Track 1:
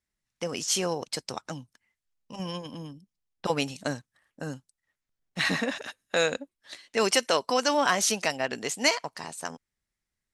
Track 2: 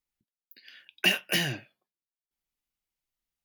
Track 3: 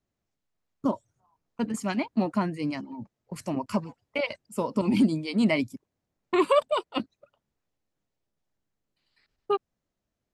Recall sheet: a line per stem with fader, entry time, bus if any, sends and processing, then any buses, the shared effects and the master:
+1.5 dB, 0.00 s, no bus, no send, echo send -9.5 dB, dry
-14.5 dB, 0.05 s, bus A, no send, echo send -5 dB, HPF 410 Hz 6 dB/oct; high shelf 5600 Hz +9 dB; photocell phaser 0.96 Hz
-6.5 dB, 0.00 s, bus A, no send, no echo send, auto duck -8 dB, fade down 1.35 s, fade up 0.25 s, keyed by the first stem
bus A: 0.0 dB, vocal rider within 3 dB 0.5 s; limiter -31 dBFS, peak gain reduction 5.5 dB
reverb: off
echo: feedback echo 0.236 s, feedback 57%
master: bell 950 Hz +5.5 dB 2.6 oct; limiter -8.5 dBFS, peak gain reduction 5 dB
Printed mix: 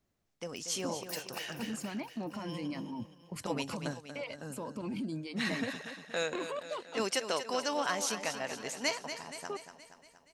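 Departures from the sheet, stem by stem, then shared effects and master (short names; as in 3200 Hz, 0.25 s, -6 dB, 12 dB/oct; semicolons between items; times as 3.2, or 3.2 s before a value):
stem 1 +1.5 dB -> -9.0 dB; stem 3 -6.5 dB -> +4.0 dB; master: missing bell 950 Hz +5.5 dB 2.6 oct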